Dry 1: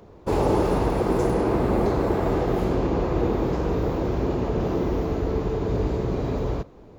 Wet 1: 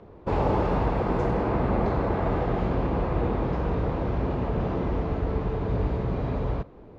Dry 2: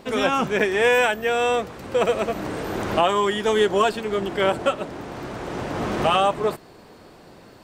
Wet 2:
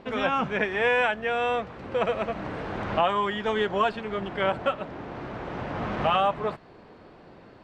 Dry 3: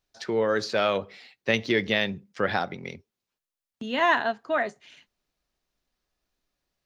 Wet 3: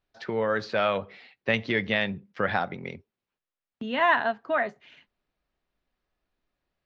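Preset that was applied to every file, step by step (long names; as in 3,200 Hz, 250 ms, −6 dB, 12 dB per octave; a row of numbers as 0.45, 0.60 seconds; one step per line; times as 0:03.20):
low-pass filter 2,900 Hz 12 dB per octave
dynamic equaliser 360 Hz, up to −7 dB, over −36 dBFS, Q 1.6
loudness normalisation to −27 LKFS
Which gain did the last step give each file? 0.0, −2.5, +1.0 decibels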